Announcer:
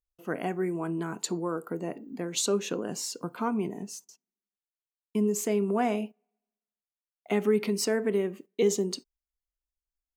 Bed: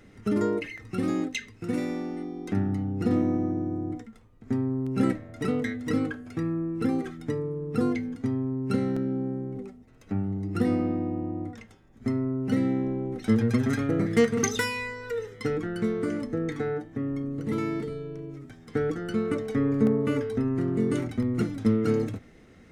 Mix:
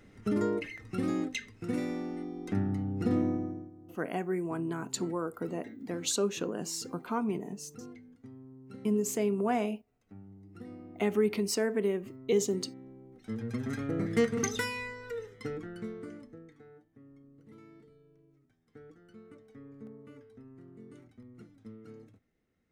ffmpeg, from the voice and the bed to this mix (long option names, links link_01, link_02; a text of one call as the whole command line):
ffmpeg -i stem1.wav -i stem2.wav -filter_complex "[0:a]adelay=3700,volume=-2.5dB[link_01];[1:a]volume=12dB,afade=type=out:start_time=3.25:duration=0.46:silence=0.133352,afade=type=in:start_time=13.13:duration=0.99:silence=0.158489,afade=type=out:start_time=14.81:duration=1.7:silence=0.1[link_02];[link_01][link_02]amix=inputs=2:normalize=0" out.wav